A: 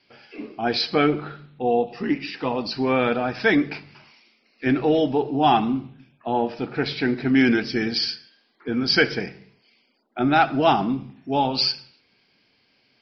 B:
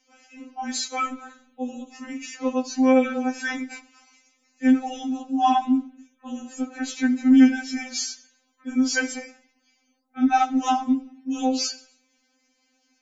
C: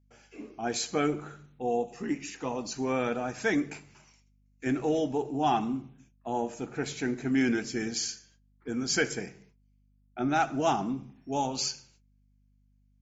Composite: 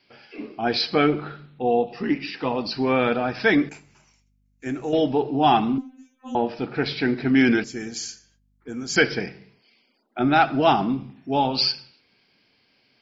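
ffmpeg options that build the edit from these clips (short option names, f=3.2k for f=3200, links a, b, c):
-filter_complex "[2:a]asplit=2[a][b];[0:a]asplit=4[c][d][e][f];[c]atrim=end=3.692[g];[a]atrim=start=3.688:end=4.932[h];[d]atrim=start=4.928:end=5.782[i];[1:a]atrim=start=5.778:end=6.352[j];[e]atrim=start=6.348:end=7.642[k];[b]atrim=start=7.638:end=8.962[l];[f]atrim=start=8.958[m];[g][h]acrossfade=d=0.004:c1=hsin:c2=hsin[n];[n][i]acrossfade=d=0.004:c1=hsin:c2=hsin[o];[o][j]acrossfade=d=0.004:c1=hsin:c2=hsin[p];[p][k]acrossfade=d=0.004:c1=hsin:c2=hsin[q];[q][l]acrossfade=d=0.004:c1=hsin:c2=hsin[r];[r][m]acrossfade=d=0.004:c1=hsin:c2=hsin"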